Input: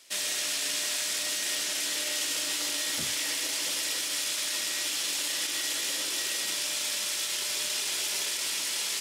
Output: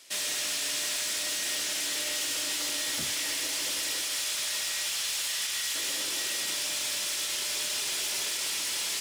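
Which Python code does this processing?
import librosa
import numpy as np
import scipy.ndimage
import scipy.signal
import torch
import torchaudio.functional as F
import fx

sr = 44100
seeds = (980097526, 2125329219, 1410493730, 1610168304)

y = fx.highpass(x, sr, hz=fx.line((4.04, 380.0), (5.74, 1000.0)), slope=12, at=(4.04, 5.74), fade=0.02)
y = 10.0 ** (-27.5 / 20.0) * np.tanh(y / 10.0 ** (-27.5 / 20.0))
y = y * 10.0 ** (2.0 / 20.0)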